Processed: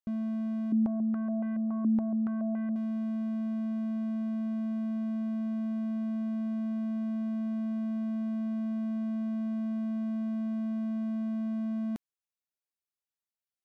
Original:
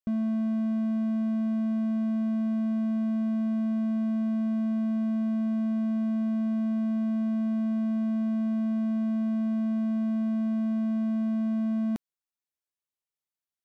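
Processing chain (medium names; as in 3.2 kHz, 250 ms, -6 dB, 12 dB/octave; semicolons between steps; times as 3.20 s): 0.72–2.76 s: step-sequenced low-pass 7.1 Hz 280–1800 Hz; trim -5 dB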